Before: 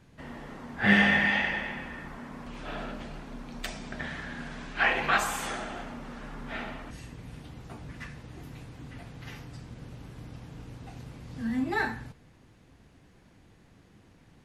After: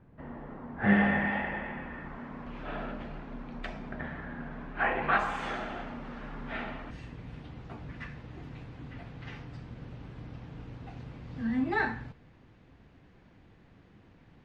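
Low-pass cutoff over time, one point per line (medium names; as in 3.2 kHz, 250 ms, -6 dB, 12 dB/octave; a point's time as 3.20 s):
1.47 s 1.3 kHz
2.22 s 2.4 kHz
3.44 s 2.4 kHz
4.15 s 1.4 kHz
4.92 s 1.4 kHz
5.58 s 3.3 kHz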